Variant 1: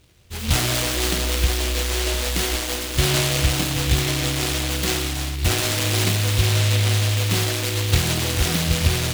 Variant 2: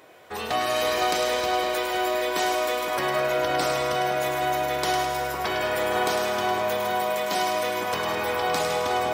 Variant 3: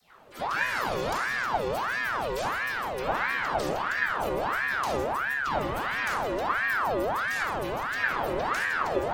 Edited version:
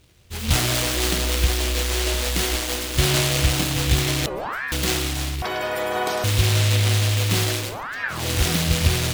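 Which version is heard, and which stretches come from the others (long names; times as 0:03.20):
1
0:04.26–0:04.72: punch in from 3
0:05.42–0:06.24: punch in from 2
0:07.67–0:08.20: punch in from 3, crossfade 0.24 s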